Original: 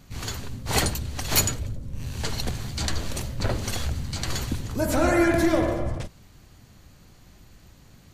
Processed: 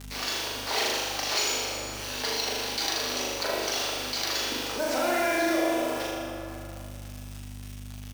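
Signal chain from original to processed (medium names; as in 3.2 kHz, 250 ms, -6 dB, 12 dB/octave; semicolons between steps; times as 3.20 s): Bessel high-pass 520 Hz, order 6; treble shelf 4.3 kHz -9 dB; in parallel at -0.5 dB: peak limiter -23.5 dBFS, peak gain reduction 11.5 dB; on the sum: four-pole ladder low-pass 6.1 kHz, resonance 50%; companded quantiser 4-bit; hum 50 Hz, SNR 26 dB; doubling 40 ms -10 dB; flutter echo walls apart 6.8 m, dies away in 0.84 s; on a send at -6 dB: reverberation RT60 2.2 s, pre-delay 6 ms; on the sum: level flattener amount 50%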